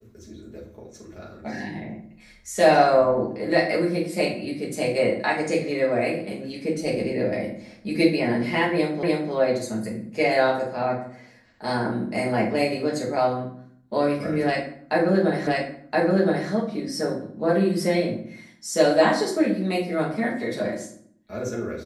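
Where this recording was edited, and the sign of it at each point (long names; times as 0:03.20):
0:09.03: the same again, the last 0.3 s
0:15.47: the same again, the last 1.02 s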